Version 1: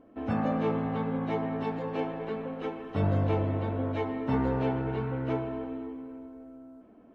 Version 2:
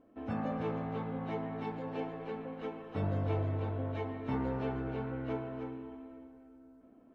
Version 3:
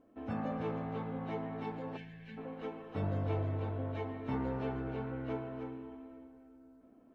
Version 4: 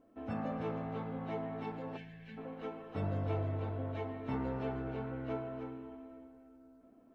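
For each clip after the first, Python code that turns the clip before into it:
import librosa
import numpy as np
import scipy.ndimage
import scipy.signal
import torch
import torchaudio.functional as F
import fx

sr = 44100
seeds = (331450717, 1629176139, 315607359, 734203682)

y1 = x + 10.0 ** (-7.5 / 20.0) * np.pad(x, (int(308 * sr / 1000.0), 0))[:len(x)]
y1 = y1 * 10.0 ** (-7.0 / 20.0)
y2 = fx.spec_box(y1, sr, start_s=1.97, length_s=0.41, low_hz=250.0, high_hz=1500.0, gain_db=-19)
y2 = y2 * 10.0 ** (-1.5 / 20.0)
y3 = fx.comb_fb(y2, sr, f0_hz=670.0, decay_s=0.19, harmonics='all', damping=0.0, mix_pct=60)
y3 = y3 * 10.0 ** (6.5 / 20.0)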